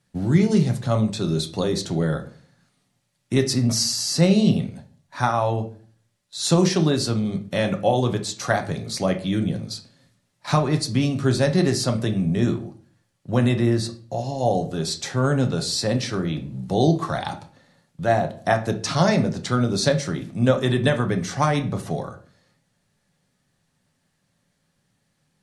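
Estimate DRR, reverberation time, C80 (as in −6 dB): 5.0 dB, 0.50 s, 18.0 dB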